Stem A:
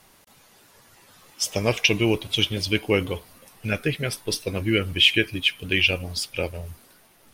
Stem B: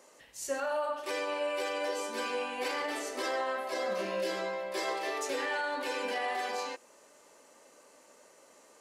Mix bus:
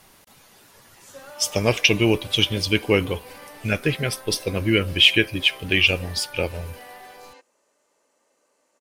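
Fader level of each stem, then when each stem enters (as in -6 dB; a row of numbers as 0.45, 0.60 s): +2.5, -9.5 dB; 0.00, 0.65 s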